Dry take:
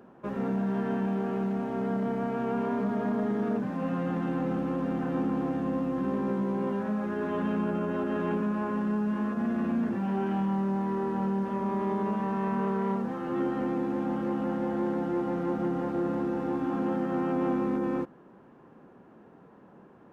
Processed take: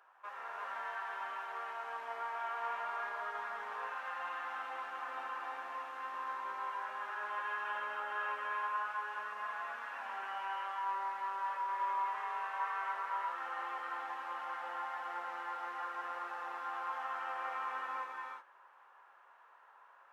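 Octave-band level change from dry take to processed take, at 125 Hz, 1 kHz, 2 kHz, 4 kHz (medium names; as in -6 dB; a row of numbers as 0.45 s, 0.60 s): under -40 dB, -1.0 dB, +2.5 dB, no reading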